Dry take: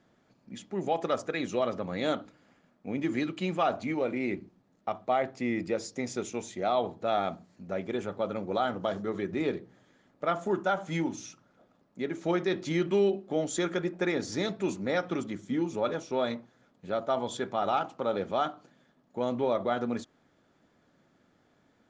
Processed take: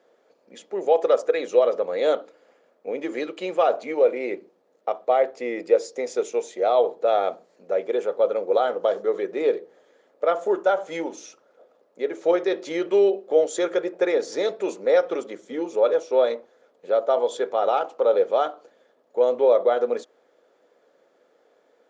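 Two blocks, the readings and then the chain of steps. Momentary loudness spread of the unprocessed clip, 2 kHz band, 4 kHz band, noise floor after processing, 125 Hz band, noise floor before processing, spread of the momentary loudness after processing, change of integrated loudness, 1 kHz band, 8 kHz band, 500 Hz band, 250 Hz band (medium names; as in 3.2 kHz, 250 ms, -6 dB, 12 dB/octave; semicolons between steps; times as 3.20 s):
8 LU, +2.0 dB, +1.5 dB, -64 dBFS, under -15 dB, -68 dBFS, 11 LU, +8.0 dB, +5.0 dB, +1.5 dB, +10.5 dB, -1.0 dB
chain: resonant high-pass 480 Hz, resonance Q 4.9; trim +1.5 dB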